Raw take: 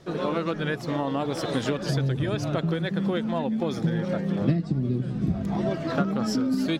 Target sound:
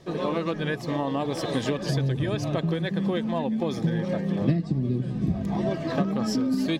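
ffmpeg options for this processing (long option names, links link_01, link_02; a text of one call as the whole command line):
ffmpeg -i in.wav -af "asuperstop=centerf=1400:order=4:qfactor=6.7" out.wav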